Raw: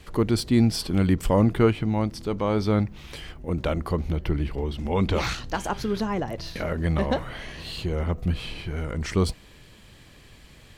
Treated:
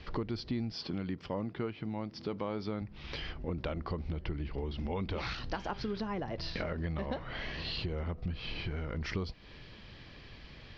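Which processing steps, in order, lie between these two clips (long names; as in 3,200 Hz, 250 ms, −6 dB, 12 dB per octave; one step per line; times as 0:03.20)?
elliptic low-pass filter 5,200 Hz, stop band 50 dB
downward compressor 6 to 1, threshold −33 dBFS, peak gain reduction 17.5 dB
0:00.73–0:02.82: high-pass filter 120 Hz 12 dB per octave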